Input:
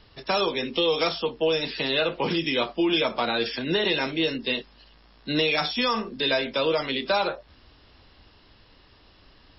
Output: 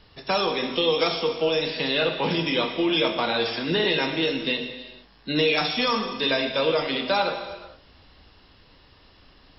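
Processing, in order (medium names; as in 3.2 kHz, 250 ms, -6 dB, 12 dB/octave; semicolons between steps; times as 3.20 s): gated-style reverb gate 490 ms falling, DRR 4.5 dB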